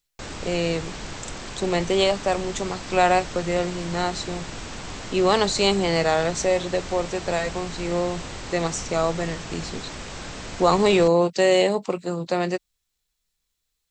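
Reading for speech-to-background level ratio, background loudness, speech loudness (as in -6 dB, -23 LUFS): 12.0 dB, -35.0 LUFS, -23.0 LUFS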